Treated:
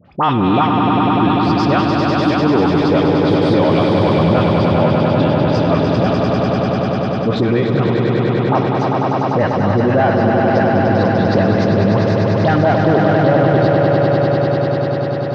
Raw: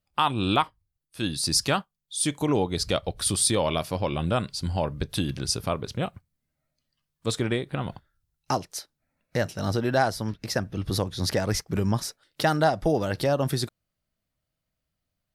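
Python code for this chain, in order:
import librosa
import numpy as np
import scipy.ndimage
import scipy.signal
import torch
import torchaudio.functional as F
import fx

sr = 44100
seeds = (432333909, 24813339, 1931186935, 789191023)

p1 = fx.low_shelf(x, sr, hz=380.0, db=6.0)
p2 = fx.leveller(p1, sr, passes=2)
p3 = fx.bandpass_edges(p2, sr, low_hz=150.0, high_hz=2900.0)
p4 = fx.air_absorb(p3, sr, metres=170.0)
p5 = fx.dispersion(p4, sr, late='highs', ms=56.0, hz=1300.0)
p6 = p5 + fx.echo_swell(p5, sr, ms=99, loudest=5, wet_db=-6, dry=0)
y = fx.env_flatten(p6, sr, amount_pct=50)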